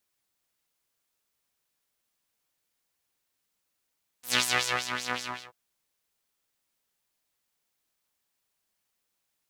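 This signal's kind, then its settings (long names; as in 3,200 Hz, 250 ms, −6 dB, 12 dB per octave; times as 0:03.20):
subtractive patch with filter wobble B2, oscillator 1 saw, interval +12 semitones, oscillator 2 level −5 dB, noise −21 dB, filter bandpass, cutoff 1,800 Hz, Q 1.8, filter envelope 2 octaves, filter decay 0.46 s, filter sustain 40%, attack 109 ms, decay 0.53 s, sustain −10.5 dB, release 0.36 s, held 0.93 s, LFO 5.3 Hz, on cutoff 1.1 octaves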